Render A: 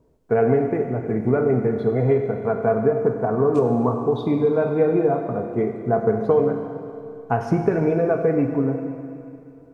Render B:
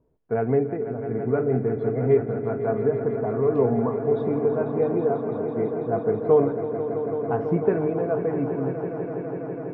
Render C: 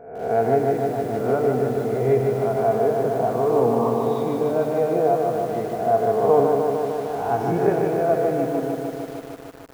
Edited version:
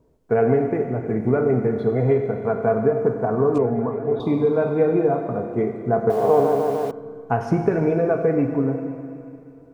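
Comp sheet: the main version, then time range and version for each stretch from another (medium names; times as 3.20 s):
A
3.58–4.20 s: from B
6.10–6.91 s: from C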